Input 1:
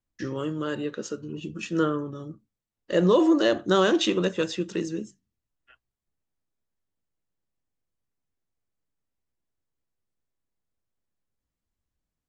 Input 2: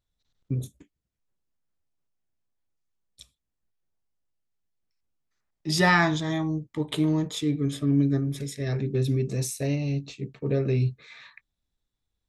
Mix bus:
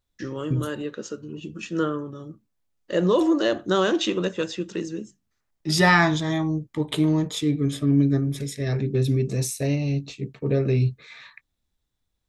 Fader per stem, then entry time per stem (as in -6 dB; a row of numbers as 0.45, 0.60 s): -0.5, +3.0 dB; 0.00, 0.00 s